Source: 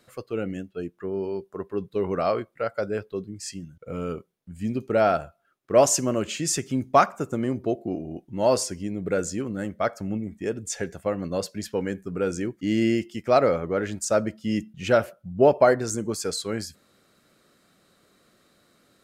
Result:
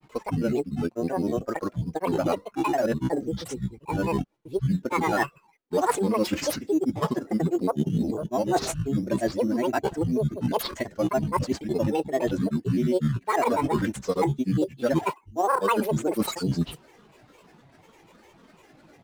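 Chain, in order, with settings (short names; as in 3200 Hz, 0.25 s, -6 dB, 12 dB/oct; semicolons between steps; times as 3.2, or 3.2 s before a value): air absorption 83 m; spectral delete 16.16–16.58, 1100–3600 Hz; dynamic EQ 270 Hz, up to +5 dB, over -33 dBFS, Q 1.1; comb 3.7 ms, depth 91%; in parallel at -4.5 dB: sample-rate reducer 5300 Hz, jitter 0%; on the sum: grains 0.1 s, pitch spread up and down by 12 st; reverse; compressor 5:1, threshold -26 dBFS, peak gain reduction 19.5 dB; reverse; gain +3.5 dB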